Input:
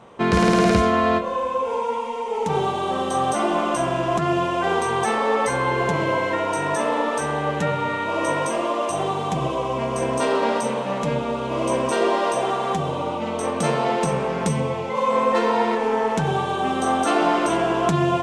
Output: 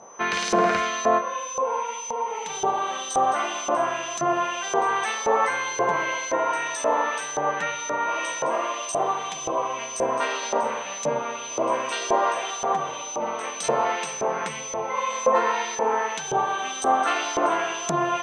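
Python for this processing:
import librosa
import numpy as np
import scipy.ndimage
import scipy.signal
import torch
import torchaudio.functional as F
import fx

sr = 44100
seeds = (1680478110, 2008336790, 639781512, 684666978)

y = x + 10.0 ** (-34.0 / 20.0) * np.sin(2.0 * np.pi * 6100.0 * np.arange(len(x)) / sr)
y = fx.filter_lfo_bandpass(y, sr, shape='saw_up', hz=1.9, low_hz=610.0, high_hz=6000.0, q=1.1)
y = F.gain(torch.from_numpy(y), 3.0).numpy()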